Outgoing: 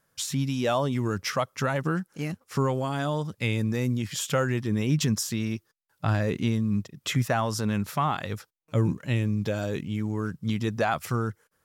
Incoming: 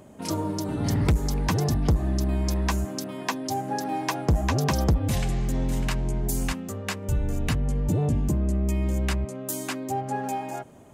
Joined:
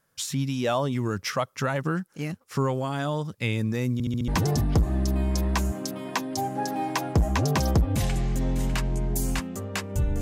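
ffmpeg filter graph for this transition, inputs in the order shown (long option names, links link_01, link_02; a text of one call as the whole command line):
ffmpeg -i cue0.wav -i cue1.wav -filter_complex "[0:a]apad=whole_dur=10.21,atrim=end=10.21,asplit=5[link_01][link_02][link_03][link_04][link_05];[link_01]atrim=end=4.002[link_06];[link_02]atrim=start=3.928:end=4.002[link_07];[link_03]atrim=start=3.928:end=4.002[link_08];[link_04]atrim=start=3.928:end=4.002[link_09];[link_05]atrim=start=3.928:end=4.002[link_10];[1:a]atrim=start=1.408:end=7.34[link_11];[link_06][link_07]acrossfade=duration=0.004:curve1=hsin:curve2=hsin[link_12];[link_12][link_08]acrossfade=duration=0.004:curve1=hsin:curve2=hsin[link_13];[link_13][link_09]acrossfade=duration=0.004:curve1=hsin:curve2=hsin[link_14];[link_14][link_10]acrossfade=duration=0.004:curve1=hsin:curve2=hsin[link_15];[link_15][link_11]acrossfade=duration=0.004:curve1=hsin:curve2=hsin" out.wav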